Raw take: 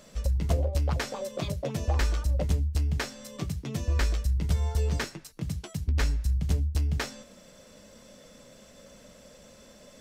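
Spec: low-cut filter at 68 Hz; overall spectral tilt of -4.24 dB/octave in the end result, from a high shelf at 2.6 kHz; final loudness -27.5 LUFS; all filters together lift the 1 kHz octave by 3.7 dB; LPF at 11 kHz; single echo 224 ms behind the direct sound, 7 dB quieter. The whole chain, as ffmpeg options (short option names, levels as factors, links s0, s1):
-af "highpass=68,lowpass=11000,equalizer=f=1000:t=o:g=3.5,highshelf=f=2600:g=8,aecho=1:1:224:0.447,volume=1.26"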